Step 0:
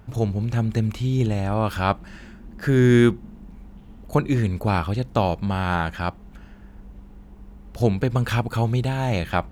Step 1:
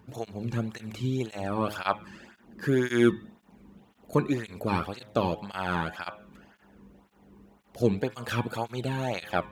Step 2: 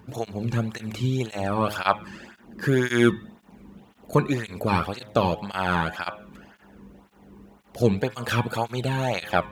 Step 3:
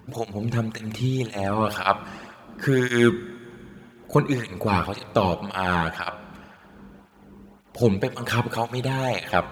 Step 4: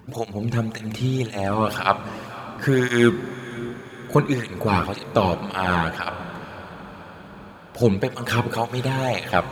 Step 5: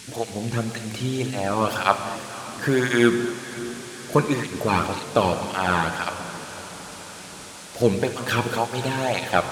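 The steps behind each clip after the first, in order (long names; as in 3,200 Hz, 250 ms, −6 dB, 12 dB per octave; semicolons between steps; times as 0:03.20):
high-pass filter 54 Hz; hum removal 105.3 Hz, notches 37; through-zero flanger with one copy inverted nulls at 1.9 Hz, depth 1.6 ms; level −1.5 dB
dynamic equaliser 310 Hz, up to −5 dB, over −36 dBFS, Q 1.4; level +6 dB
dense smooth reverb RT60 3.4 s, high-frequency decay 0.95×, pre-delay 0 ms, DRR 18 dB; level +1 dB
feedback delay with all-pass diffusion 542 ms, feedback 63%, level −15 dB; level +1.5 dB
noise in a band 1,500–10,000 Hz −43 dBFS; parametric band 63 Hz −7 dB 2.5 octaves; reverb whose tail is shaped and stops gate 270 ms flat, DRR 10 dB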